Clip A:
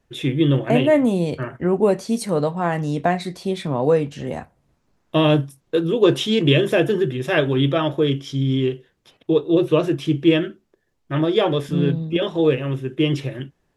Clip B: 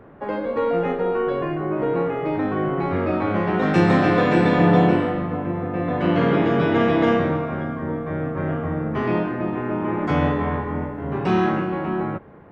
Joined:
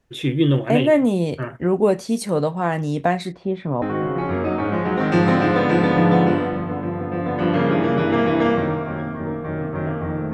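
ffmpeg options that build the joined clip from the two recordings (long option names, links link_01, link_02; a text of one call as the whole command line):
ffmpeg -i cue0.wav -i cue1.wav -filter_complex "[0:a]asettb=1/sr,asplit=3[link_01][link_02][link_03];[link_01]atrim=end=3.324[link_04];[link_02]atrim=start=3.32:end=3.82,asetpts=PTS-STARTPTS,afade=type=in:duration=0.004:curve=qsin,afade=type=out:start_time=0.496:duration=0.004:curve=qsin,lowpass=1700[link_05];[link_03]atrim=start=3.816[link_06];[link_04][link_05]acrossfade=duration=0.004:curve1=hsin:curve2=qsin[link_07];[link_07][link_06]acrossfade=duration=0.004:curve1=qsin:curve2=hsin,apad=whole_dur=10.33,atrim=end=10.33,atrim=end=3.822[link_08];[1:a]atrim=start=2.438:end=8.95[link_09];[link_08][link_09]acrossfade=duration=0.004:curve1=hsin:curve2=hsin" out.wav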